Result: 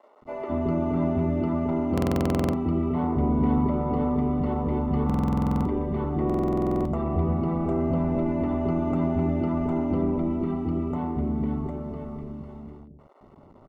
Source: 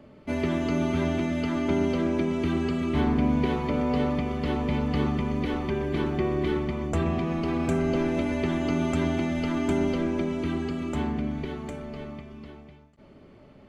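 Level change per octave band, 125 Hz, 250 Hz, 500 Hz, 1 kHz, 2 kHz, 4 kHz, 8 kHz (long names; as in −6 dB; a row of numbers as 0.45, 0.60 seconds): +3.0 dB, +1.0 dB, 0.0 dB, +2.0 dB, −9.5 dB, below −10 dB, can't be measured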